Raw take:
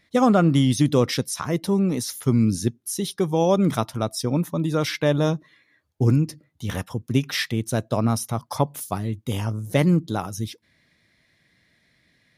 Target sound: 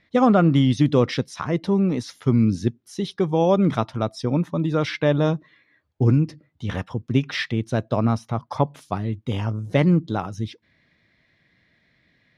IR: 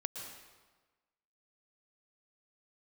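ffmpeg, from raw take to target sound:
-filter_complex "[0:a]lowpass=3.6k,asplit=3[a][b][c];[a]afade=t=out:st=8.15:d=0.02[d];[b]adynamicequalizer=threshold=0.00631:dfrequency=2700:dqfactor=0.7:tfrequency=2700:tqfactor=0.7:attack=5:release=100:ratio=0.375:range=2.5:mode=cutabove:tftype=highshelf,afade=t=in:st=8.15:d=0.02,afade=t=out:st=8.61:d=0.02[e];[c]afade=t=in:st=8.61:d=0.02[f];[d][e][f]amix=inputs=3:normalize=0,volume=1dB"

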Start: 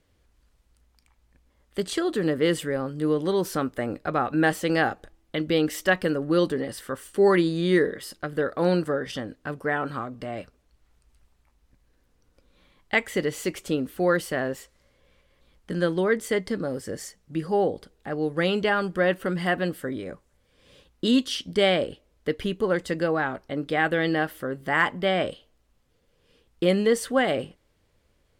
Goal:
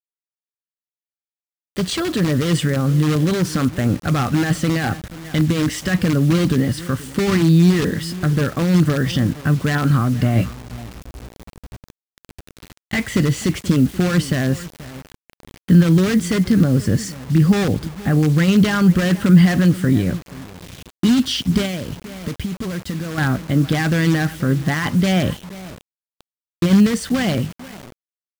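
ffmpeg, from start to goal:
-filter_complex "[0:a]asplit=2[a][b];[b]aeval=exprs='(mod(7.94*val(0)+1,2)-1)/7.94':c=same,volume=-4dB[c];[a][c]amix=inputs=2:normalize=0,equalizer=f=890:w=7.5:g=-5,dynaudnorm=f=180:g=17:m=14.5dB,asplit=2[d][e];[e]adelay=481,lowpass=f=2k:p=1,volume=-21dB,asplit=2[f][g];[g]adelay=481,lowpass=f=2k:p=1,volume=0.17[h];[d][f][h]amix=inputs=3:normalize=0,alimiter=limit=-11dB:level=0:latency=1:release=26,highpass=100,lowpass=7.7k,asubboost=boost=11.5:cutoff=140,asettb=1/sr,asplit=3[i][j][k];[i]atrim=end=10.344[l];[j]atrim=start=10.34:end=13,asetpts=PTS-STARTPTS,afade=t=in:d=0.004:c=qsin,afade=t=out:st=2.656:d=0.004:c=qsin,asplit=2[m][n];[n]adelay=17,volume=-5dB[o];[m][o]amix=inputs=2:normalize=0,atrim=end_sample=117306[p];[k]atrim=start=12.996[q];[l][p]acrossfade=d=0.004:c1=hsin:c2=qsin[r];[r][q]acrossfade=d=0.004:c1=qsin:c2=hsin,asettb=1/sr,asplit=3[s][t][u];[s]atrim=end=21.654[v];[t]atrim=start=21.65:end=23.18,asetpts=PTS-STARTPTS,afade=t=in:d=0.004:c=qsin,afade=t=out:st=1.526:d=0.004:c=qsin,acompressor=threshold=-21dB:ratio=12[w];[u]atrim=start=23.176[x];[v][w]acrossfade=d=0.004:c1=hsin:c2=qsin[y];[y][x]acrossfade=d=0.004:c1=qsin:c2=hsin,acrusher=bits=5:mix=0:aa=0.000001,volume=-1dB"

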